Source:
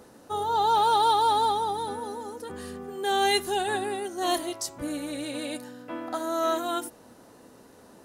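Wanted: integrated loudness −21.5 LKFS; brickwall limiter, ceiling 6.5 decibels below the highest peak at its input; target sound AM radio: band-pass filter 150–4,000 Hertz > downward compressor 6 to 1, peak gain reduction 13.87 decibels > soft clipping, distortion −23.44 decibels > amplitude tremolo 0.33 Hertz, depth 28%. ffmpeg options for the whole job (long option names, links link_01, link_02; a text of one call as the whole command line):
ffmpeg -i in.wav -af "alimiter=limit=-18dB:level=0:latency=1,highpass=150,lowpass=4000,acompressor=threshold=-37dB:ratio=6,asoftclip=threshold=-30.5dB,tremolo=f=0.33:d=0.28,volume=20.5dB" out.wav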